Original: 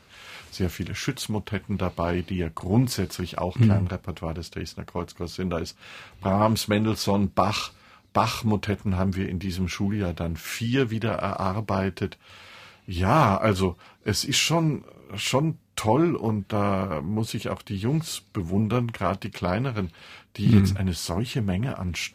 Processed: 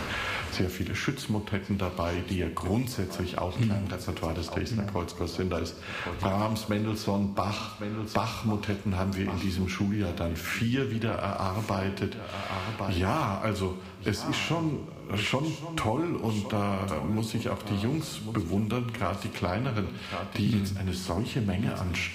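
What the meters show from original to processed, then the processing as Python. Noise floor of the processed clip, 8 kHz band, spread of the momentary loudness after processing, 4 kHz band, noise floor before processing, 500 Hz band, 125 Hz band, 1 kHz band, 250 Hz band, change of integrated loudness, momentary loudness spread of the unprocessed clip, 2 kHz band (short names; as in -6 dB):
-41 dBFS, -7.5 dB, 5 LU, -4.5 dB, -56 dBFS, -4.5 dB, -4.5 dB, -5.0 dB, -4.0 dB, -4.5 dB, 13 LU, -1.0 dB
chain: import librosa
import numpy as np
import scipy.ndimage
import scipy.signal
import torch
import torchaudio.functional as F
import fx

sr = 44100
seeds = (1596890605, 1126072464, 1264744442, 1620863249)

p1 = x + fx.echo_single(x, sr, ms=1104, db=-16.5, dry=0)
p2 = fx.rev_double_slope(p1, sr, seeds[0], early_s=0.67, late_s=2.1, knee_db=-26, drr_db=7.5)
p3 = fx.band_squash(p2, sr, depth_pct=100)
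y = p3 * librosa.db_to_amplitude(-5.5)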